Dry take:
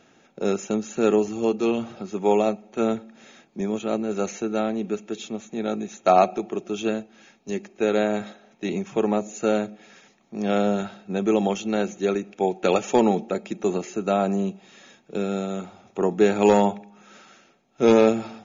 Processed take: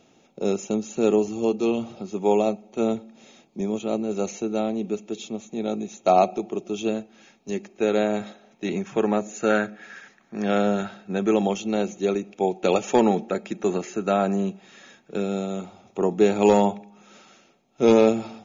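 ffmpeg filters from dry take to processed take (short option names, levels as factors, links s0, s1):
-af "asetnsamples=n=441:p=0,asendcmd='6.96 equalizer g -3;8.67 equalizer g 4.5;9.5 equalizer g 14.5;10.44 equalizer g 3.5;11.42 equalizer g -6.5;12.87 equalizer g 3.5;15.2 equalizer g -6',equalizer=f=1600:t=o:w=0.61:g=-12"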